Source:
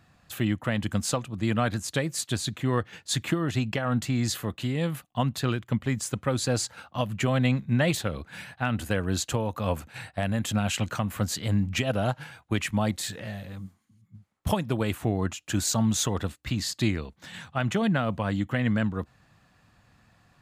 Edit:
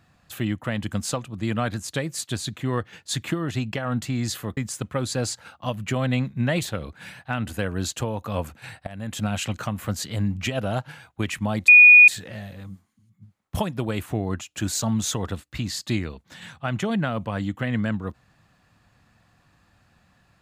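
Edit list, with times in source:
4.57–5.89 s: delete
10.19–10.55 s: fade in, from -17 dB
13.00 s: add tone 2.46 kHz -6.5 dBFS 0.40 s

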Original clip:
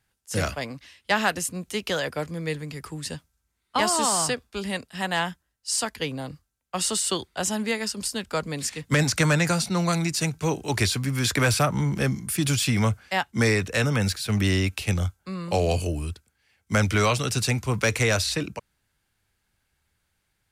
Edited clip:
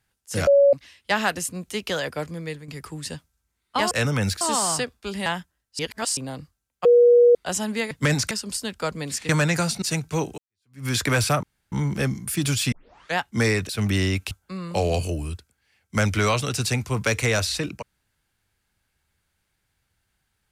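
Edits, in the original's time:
0.47–0.73 s: bleep 562 Hz -11.5 dBFS
2.29–2.68 s: fade out, to -8.5 dB
4.76–5.17 s: delete
5.70–6.08 s: reverse
6.76–7.26 s: bleep 481 Hz -10.5 dBFS
8.80–9.20 s: move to 7.82 s
9.73–10.12 s: delete
10.68–11.16 s: fade in exponential
11.73 s: insert room tone 0.29 s
12.73 s: tape start 0.46 s
13.70–14.20 s: move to 3.91 s
14.82–15.08 s: delete

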